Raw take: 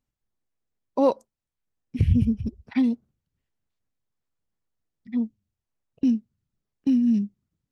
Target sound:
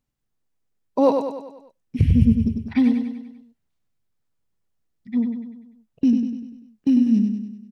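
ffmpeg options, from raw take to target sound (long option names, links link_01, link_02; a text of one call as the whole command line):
ffmpeg -i in.wav -filter_complex "[0:a]equalizer=frequency=160:width=1.5:gain=2.5,asplit=2[link_01][link_02];[link_02]aecho=0:1:98|196|294|392|490|588:0.501|0.261|0.136|0.0705|0.0366|0.0191[link_03];[link_01][link_03]amix=inputs=2:normalize=0,volume=2.5dB" out.wav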